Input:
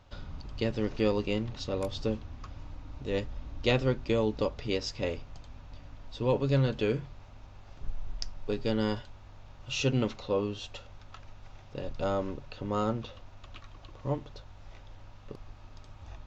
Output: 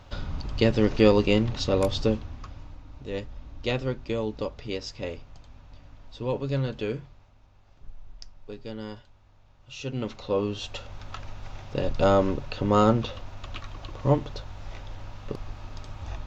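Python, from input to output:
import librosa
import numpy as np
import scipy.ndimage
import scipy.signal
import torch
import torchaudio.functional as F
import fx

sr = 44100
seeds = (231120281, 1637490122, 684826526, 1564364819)

y = fx.gain(x, sr, db=fx.line((1.9, 9.0), (2.84, -1.5), (6.93, -1.5), (7.35, -8.0), (9.79, -8.0), (10.18, 1.5), (11.06, 10.0)))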